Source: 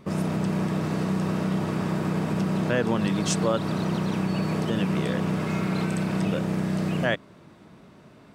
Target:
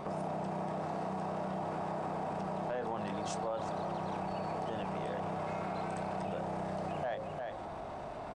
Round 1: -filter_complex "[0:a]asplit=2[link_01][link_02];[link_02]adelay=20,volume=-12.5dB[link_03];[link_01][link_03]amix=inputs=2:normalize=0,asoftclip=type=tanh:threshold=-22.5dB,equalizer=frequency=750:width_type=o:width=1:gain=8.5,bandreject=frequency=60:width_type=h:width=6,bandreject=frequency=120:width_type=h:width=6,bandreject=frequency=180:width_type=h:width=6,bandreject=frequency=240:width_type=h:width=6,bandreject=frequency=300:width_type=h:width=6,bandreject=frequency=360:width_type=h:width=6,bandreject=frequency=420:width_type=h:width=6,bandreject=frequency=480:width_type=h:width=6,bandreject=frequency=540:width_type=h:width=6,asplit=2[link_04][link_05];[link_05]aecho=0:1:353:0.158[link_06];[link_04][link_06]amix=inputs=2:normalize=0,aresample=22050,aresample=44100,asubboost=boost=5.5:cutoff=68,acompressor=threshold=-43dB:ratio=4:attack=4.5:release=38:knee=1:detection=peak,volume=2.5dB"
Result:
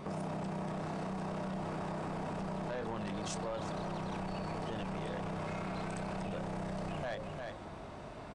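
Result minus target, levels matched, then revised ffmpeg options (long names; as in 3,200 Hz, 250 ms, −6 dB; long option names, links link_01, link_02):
soft clipping: distortion +12 dB; 1,000 Hz band −3.0 dB
-filter_complex "[0:a]asplit=2[link_01][link_02];[link_02]adelay=20,volume=-12.5dB[link_03];[link_01][link_03]amix=inputs=2:normalize=0,asoftclip=type=tanh:threshold=-13.5dB,equalizer=frequency=750:width_type=o:width=1:gain=19.5,bandreject=frequency=60:width_type=h:width=6,bandreject=frequency=120:width_type=h:width=6,bandreject=frequency=180:width_type=h:width=6,bandreject=frequency=240:width_type=h:width=6,bandreject=frequency=300:width_type=h:width=6,bandreject=frequency=360:width_type=h:width=6,bandreject=frequency=420:width_type=h:width=6,bandreject=frequency=480:width_type=h:width=6,bandreject=frequency=540:width_type=h:width=6,asplit=2[link_04][link_05];[link_05]aecho=0:1:353:0.158[link_06];[link_04][link_06]amix=inputs=2:normalize=0,aresample=22050,aresample=44100,asubboost=boost=5.5:cutoff=68,acompressor=threshold=-43dB:ratio=4:attack=4.5:release=38:knee=1:detection=peak,volume=2.5dB"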